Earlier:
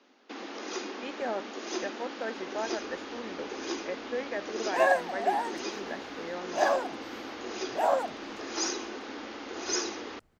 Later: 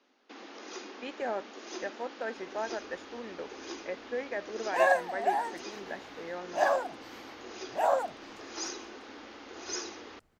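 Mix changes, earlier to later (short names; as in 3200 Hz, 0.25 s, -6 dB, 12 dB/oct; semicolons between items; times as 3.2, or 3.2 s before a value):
first sound -6.0 dB; master: add low shelf 350 Hz -3 dB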